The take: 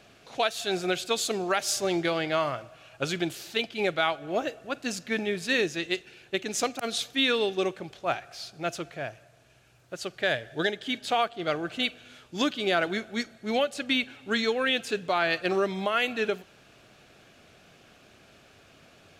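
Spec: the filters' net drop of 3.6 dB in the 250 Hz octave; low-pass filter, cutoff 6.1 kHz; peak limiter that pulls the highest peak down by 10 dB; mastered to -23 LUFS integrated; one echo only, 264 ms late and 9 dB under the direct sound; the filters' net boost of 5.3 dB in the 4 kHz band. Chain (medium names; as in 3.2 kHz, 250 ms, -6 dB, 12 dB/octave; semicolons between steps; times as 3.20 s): low-pass 6.1 kHz; peaking EQ 250 Hz -5 dB; peaking EQ 4 kHz +7 dB; peak limiter -19 dBFS; delay 264 ms -9 dB; trim +7.5 dB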